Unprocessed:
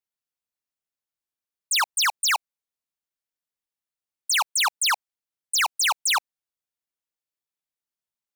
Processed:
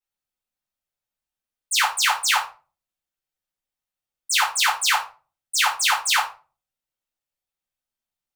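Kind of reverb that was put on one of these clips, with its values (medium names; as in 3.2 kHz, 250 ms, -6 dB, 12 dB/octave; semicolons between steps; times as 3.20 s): simulated room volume 190 m³, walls furnished, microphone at 5.2 m; trim -7 dB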